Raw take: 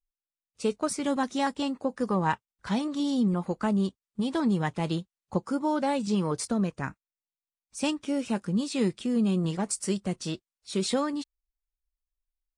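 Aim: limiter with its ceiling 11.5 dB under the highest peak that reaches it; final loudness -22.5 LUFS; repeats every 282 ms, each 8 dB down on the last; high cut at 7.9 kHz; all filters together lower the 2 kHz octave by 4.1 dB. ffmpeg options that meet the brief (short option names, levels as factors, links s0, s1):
-af "lowpass=7900,equalizer=f=2000:t=o:g=-5.5,alimiter=level_in=1.33:limit=0.0631:level=0:latency=1,volume=0.75,aecho=1:1:282|564|846|1128|1410:0.398|0.159|0.0637|0.0255|0.0102,volume=4.22"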